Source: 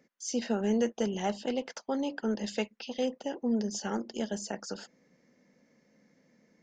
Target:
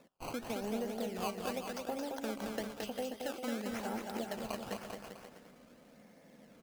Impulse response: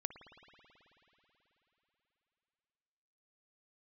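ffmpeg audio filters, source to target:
-af "equalizer=f=700:t=o:w=0.72:g=9,acompressor=threshold=0.00631:ratio=3,acrusher=samples=14:mix=1:aa=0.000001:lfo=1:lforange=22.4:lforate=0.94,aecho=1:1:220|396|536.8|649.4|739.6:0.631|0.398|0.251|0.158|0.1,volume=1.33"

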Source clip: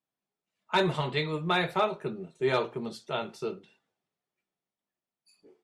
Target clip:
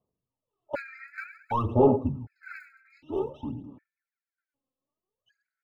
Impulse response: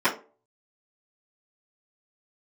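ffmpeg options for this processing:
-filter_complex "[0:a]aemphasis=mode=reproduction:type=bsi,aecho=1:1:108|216|324:0.188|0.0584|0.0181,asplit=2[s0][s1];[1:a]atrim=start_sample=2205[s2];[s1][s2]afir=irnorm=-1:irlink=0,volume=0.0158[s3];[s0][s3]amix=inputs=2:normalize=0,asplit=2[s4][s5];[s5]highpass=f=720:p=1,volume=6.31,asoftclip=type=tanh:threshold=0.251[s6];[s4][s6]amix=inputs=2:normalize=0,lowpass=f=1700:p=1,volume=0.501,asetrate=28595,aresample=44100,atempo=1.54221,bandreject=f=800:w=12,aphaser=in_gain=1:out_gain=1:delay=3.8:decay=0.77:speed=0.53:type=sinusoidal,afftfilt=real='re*gt(sin(2*PI*0.66*pts/sr)*(1-2*mod(floor(b*sr/1024/1300),2)),0)':imag='im*gt(sin(2*PI*0.66*pts/sr)*(1-2*mod(floor(b*sr/1024/1300),2)),0)':win_size=1024:overlap=0.75,volume=0.473"

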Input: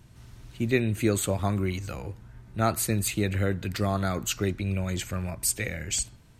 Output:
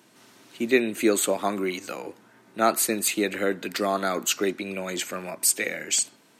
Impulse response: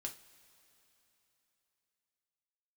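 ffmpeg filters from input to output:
-af "highpass=f=250:w=0.5412,highpass=f=250:w=1.3066,volume=1.78"

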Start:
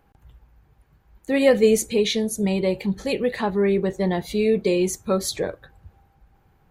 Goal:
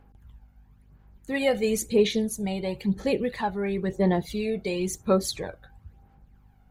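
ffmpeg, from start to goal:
-af "aphaser=in_gain=1:out_gain=1:delay=1.4:decay=0.53:speed=0.98:type=sinusoidal,aeval=exprs='val(0)+0.00282*(sin(2*PI*50*n/s)+sin(2*PI*2*50*n/s)/2+sin(2*PI*3*50*n/s)/3+sin(2*PI*4*50*n/s)/4+sin(2*PI*5*50*n/s)/5)':c=same,volume=0.501"

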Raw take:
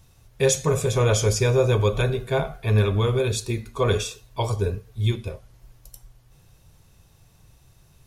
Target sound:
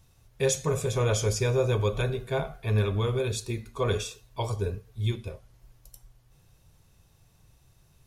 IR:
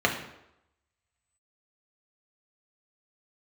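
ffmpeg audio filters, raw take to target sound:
-af "volume=0.531"

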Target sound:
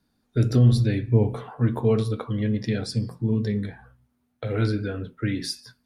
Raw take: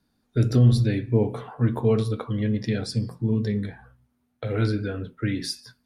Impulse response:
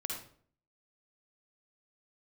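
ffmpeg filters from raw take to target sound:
-filter_complex "[0:a]asettb=1/sr,asplit=3[s0][s1][s2];[s0]atrim=end=0.824[s3];[s1]atrim=start=0.82:end=1.35,asetpts=PTS-STARTPTS,afade=t=in:d=0.004:c=qsin,afade=t=out:st=0.526:d=0.004:c=qsin,asubboost=boost=10.5:cutoff=170[s4];[s2]atrim=start=1.346[s5];[s3][s4]acrossfade=d=0.004:c1=hsin:c2=qsin[s6];[s6][s5]acrossfade=d=0.004:c1=qsin:c2=hsin"

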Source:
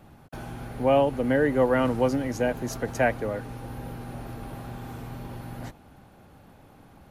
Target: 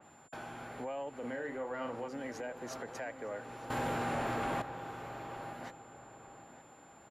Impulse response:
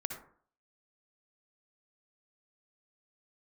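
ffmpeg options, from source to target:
-filter_complex "[0:a]highpass=f=970:p=1,aemphasis=mode=reproduction:type=75kf,acompressor=threshold=0.00891:ratio=2.5,alimiter=level_in=3.16:limit=0.0631:level=0:latency=1:release=27,volume=0.316,asoftclip=type=tanh:threshold=0.0237,aeval=exprs='val(0)+0.000447*sin(2*PI*7200*n/s)':c=same,asettb=1/sr,asplit=3[s0][s1][s2];[s0]atrim=end=1.154[s3];[s1]atrim=start=1.15:end=2.08,asetpts=PTS-STARTPTS,afade=t=in:d=0.004:c=qsin,afade=t=out:st=0.926:d=0.004:c=qsin,asplit=2[s4][s5];[s5]adelay=42,volume=0.473[s6];[s4][s6]amix=inputs=2:normalize=0,atrim=end_sample=41013[s7];[s2]atrim=start=2.076[s8];[s3][s7]acrossfade=d=0.004:c1=hsin:c2=qsin[s9];[s9][s8]acrossfade=d=0.004:c1=qsin:c2=hsin,asettb=1/sr,asplit=3[s10][s11][s12];[s10]atrim=end=3.704[s13];[s11]atrim=start=3.7:end=4.62,asetpts=PTS-STARTPTS,afade=t=in:d=0.004:c=qsin,afade=t=out:st=0.916:d=0.004:c=qsin,aeval=exprs='0.0237*sin(PI/2*3.16*val(0)/0.0237)':c=same[s14];[s12]atrim=start=4.616[s15];[s13][s14]acrossfade=d=0.004:c1=hsin:c2=qsin[s16];[s16][s15]acrossfade=d=0.004:c1=qsin:c2=hsin,asplit=2[s17][s18];[s18]adelay=911,lowpass=f=1800:p=1,volume=0.251,asplit=2[s19][s20];[s20]adelay=911,lowpass=f=1800:p=1,volume=0.36,asplit=2[s21][s22];[s22]adelay=911,lowpass=f=1800:p=1,volume=0.36,asplit=2[s23][s24];[s24]adelay=911,lowpass=f=1800:p=1,volume=0.36[s25];[s17][s19][s21][s23][s25]amix=inputs=5:normalize=0,adynamicequalizer=threshold=0.00224:dfrequency=3300:dqfactor=0.7:tfrequency=3300:tqfactor=0.7:attack=5:release=100:ratio=0.375:range=3:mode=cutabove:tftype=highshelf,volume=1.33"

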